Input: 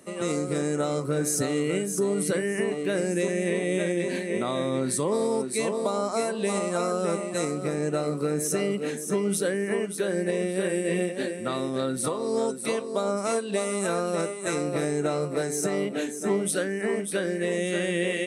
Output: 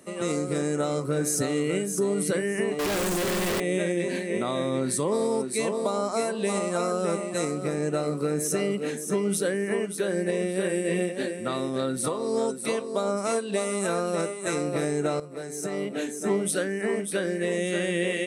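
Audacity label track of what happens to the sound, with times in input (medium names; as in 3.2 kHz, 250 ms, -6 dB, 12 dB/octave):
2.790000	3.600000	one-bit comparator
15.200000	16.140000	fade in linear, from -14 dB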